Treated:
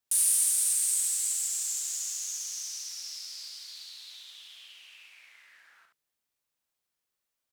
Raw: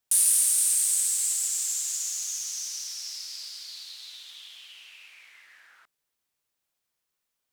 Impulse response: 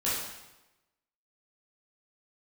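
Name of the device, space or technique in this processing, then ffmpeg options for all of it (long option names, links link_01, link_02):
slapback doubling: -filter_complex "[0:a]asplit=3[link_01][link_02][link_03];[link_02]adelay=39,volume=-9dB[link_04];[link_03]adelay=71,volume=-6.5dB[link_05];[link_01][link_04][link_05]amix=inputs=3:normalize=0,volume=-4.5dB"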